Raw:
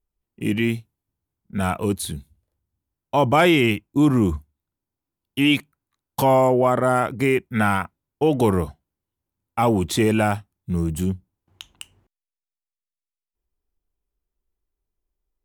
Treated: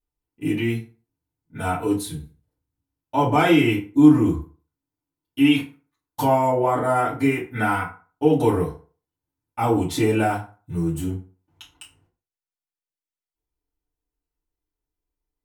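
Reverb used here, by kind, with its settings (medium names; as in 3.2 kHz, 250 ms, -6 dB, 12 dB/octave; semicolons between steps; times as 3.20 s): FDN reverb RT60 0.38 s, low-frequency decay 0.9×, high-frequency decay 0.65×, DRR -8.5 dB; trim -11 dB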